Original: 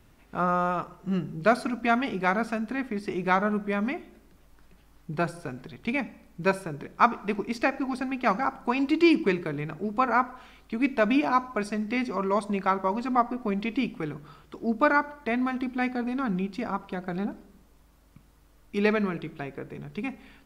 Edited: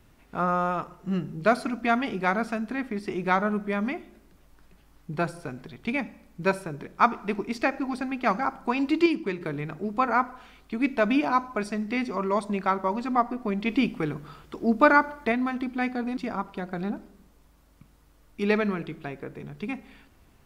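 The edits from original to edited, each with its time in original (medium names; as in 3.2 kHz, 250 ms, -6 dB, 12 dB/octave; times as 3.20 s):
9.06–9.41 s: gain -5.5 dB
13.66–15.32 s: gain +4 dB
16.17–16.52 s: delete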